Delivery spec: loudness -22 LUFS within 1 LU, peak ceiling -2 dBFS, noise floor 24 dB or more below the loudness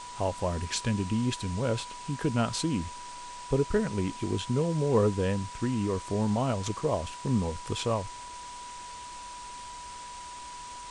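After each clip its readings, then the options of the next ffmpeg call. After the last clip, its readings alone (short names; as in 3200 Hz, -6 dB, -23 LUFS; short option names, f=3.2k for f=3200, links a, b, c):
steady tone 980 Hz; tone level -41 dBFS; noise floor -43 dBFS; noise floor target -54 dBFS; loudness -30.0 LUFS; peak -13.0 dBFS; loudness target -22.0 LUFS
-> -af "bandreject=f=980:w=30"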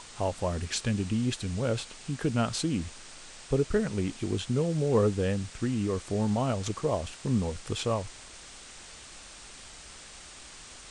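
steady tone none; noise floor -48 dBFS; noise floor target -54 dBFS
-> -af "afftdn=nr=6:nf=-48"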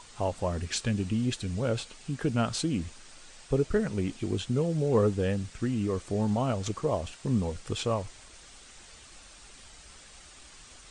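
noise floor -52 dBFS; noise floor target -54 dBFS
-> -af "afftdn=nr=6:nf=-52"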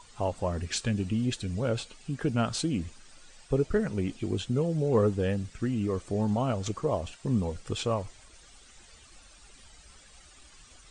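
noise floor -55 dBFS; loudness -30.0 LUFS; peak -13.5 dBFS; loudness target -22.0 LUFS
-> -af "volume=8dB"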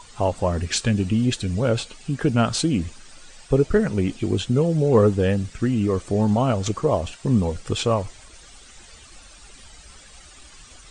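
loudness -22.0 LUFS; peak -5.5 dBFS; noise floor -47 dBFS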